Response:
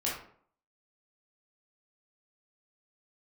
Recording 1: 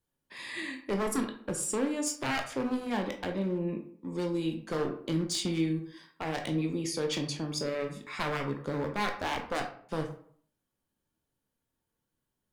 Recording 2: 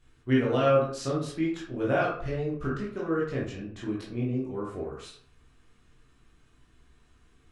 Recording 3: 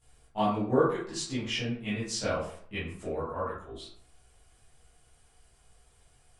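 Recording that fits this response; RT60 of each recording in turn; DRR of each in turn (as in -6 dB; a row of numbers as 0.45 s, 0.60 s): 2; 0.55 s, 0.55 s, 0.55 s; 3.5 dB, -6.0 dB, -13.0 dB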